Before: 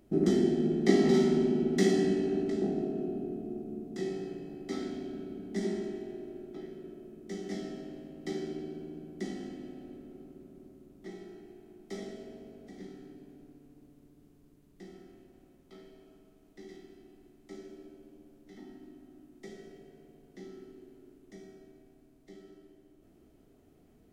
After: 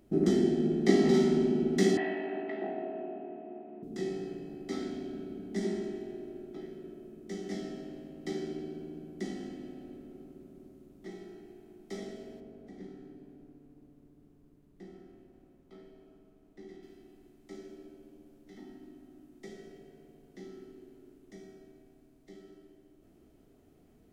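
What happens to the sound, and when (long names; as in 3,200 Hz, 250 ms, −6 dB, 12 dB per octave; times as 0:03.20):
0:01.97–0:03.83: loudspeaker in its box 430–2,900 Hz, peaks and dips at 460 Hz −7 dB, 650 Hz +9 dB, 940 Hz +9 dB, 1,900 Hz +9 dB, 2,700 Hz +5 dB
0:12.40–0:16.83: high-shelf EQ 2,400 Hz −9 dB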